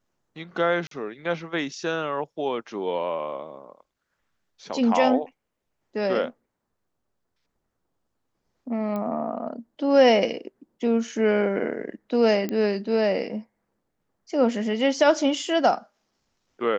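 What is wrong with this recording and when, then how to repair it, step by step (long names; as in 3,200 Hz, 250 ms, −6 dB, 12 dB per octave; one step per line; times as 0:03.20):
0:00.87–0:00.91: drop-out 43 ms
0:08.96: click −19 dBFS
0:12.49: click −15 dBFS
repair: click removal
repair the gap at 0:00.87, 43 ms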